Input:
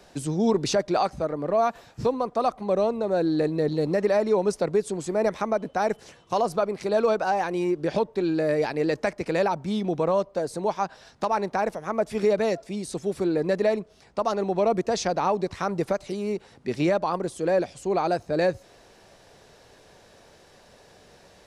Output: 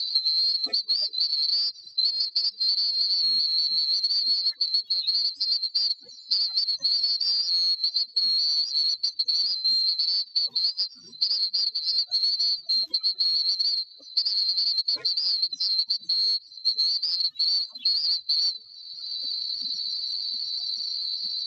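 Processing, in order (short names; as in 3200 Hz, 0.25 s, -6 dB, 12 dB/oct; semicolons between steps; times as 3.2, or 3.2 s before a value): band-swap scrambler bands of 4000 Hz; low shelf 440 Hz +10 dB; notches 50/100/150/200/250/300/350/400/450 Hz; compressor 5:1, threshold -24 dBFS, peak gain reduction 7 dB; loudest bins only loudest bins 16; short-mantissa float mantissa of 2-bit; speaker cabinet 270–5900 Hz, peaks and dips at 830 Hz -10 dB, 1500 Hz -5 dB, 2200 Hz -5 dB, 3800 Hz +9 dB; three-band squash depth 100%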